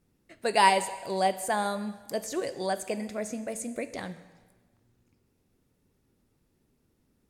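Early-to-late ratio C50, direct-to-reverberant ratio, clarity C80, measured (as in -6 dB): 13.5 dB, 11.5 dB, 15.0 dB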